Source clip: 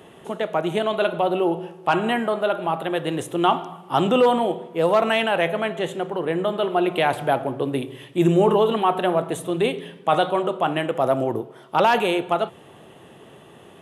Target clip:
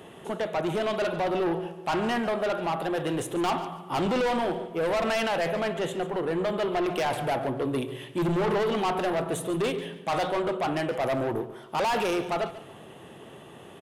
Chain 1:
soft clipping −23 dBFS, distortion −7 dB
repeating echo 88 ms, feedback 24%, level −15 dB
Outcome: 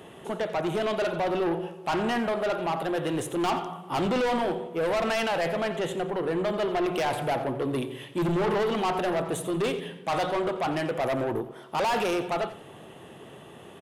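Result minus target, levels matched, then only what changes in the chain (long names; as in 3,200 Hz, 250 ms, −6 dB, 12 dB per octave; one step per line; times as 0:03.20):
echo 54 ms early
change: repeating echo 142 ms, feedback 24%, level −15 dB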